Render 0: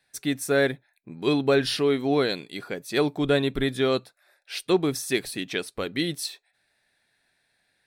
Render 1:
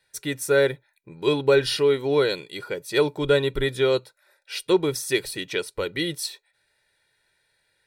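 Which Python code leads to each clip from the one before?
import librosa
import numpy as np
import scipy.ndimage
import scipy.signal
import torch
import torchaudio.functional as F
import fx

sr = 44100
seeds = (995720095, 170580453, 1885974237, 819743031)

y = x + 0.67 * np.pad(x, (int(2.1 * sr / 1000.0), 0))[:len(x)]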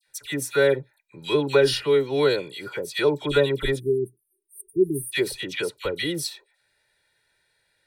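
y = fx.dispersion(x, sr, late='lows', ms=73.0, hz=1600.0)
y = fx.spec_erase(y, sr, start_s=3.79, length_s=1.33, low_hz=410.0, high_hz=8400.0)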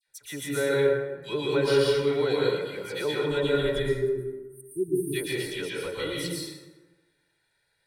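y = fx.rev_plate(x, sr, seeds[0], rt60_s=1.2, hf_ratio=0.55, predelay_ms=105, drr_db=-4.0)
y = y * 10.0 ** (-9.0 / 20.0)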